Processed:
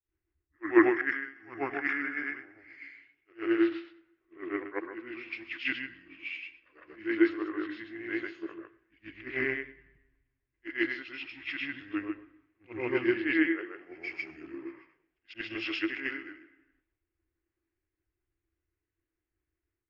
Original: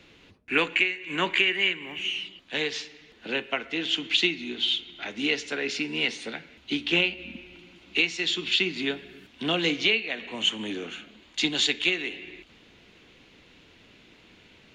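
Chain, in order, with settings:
every overlapping window played backwards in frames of 232 ms
drawn EQ curve 130 Hz 0 dB, 280 Hz −18 dB, 450 Hz +15 dB, 710 Hz +1 dB, 2,300 Hz +1 dB, 5,200 Hz −5 dB, 10,000 Hz −10 dB
wrong playback speed 45 rpm record played at 33 rpm
multiband upward and downward expander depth 100%
level −7.5 dB

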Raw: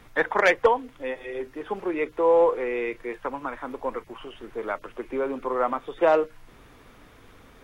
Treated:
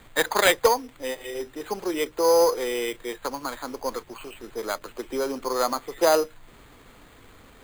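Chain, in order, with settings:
phase distortion by the signal itself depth 0.051 ms
high-shelf EQ 4,900 Hz +8.5 dB
decimation without filtering 8×

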